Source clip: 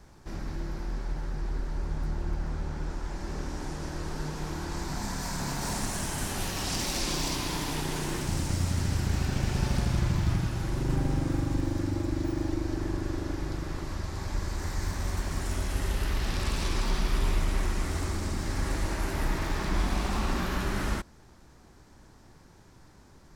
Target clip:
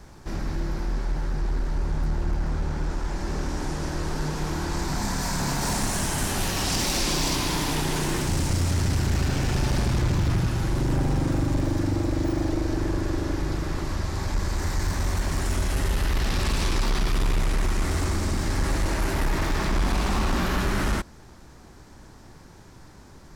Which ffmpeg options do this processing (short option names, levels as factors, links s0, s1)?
-af "aeval=exprs='0.224*(cos(1*acos(clip(val(0)/0.224,-1,1)))-cos(1*PI/2))+0.0891*(cos(5*acos(clip(val(0)/0.224,-1,1)))-cos(5*PI/2))':c=same,volume=0.75"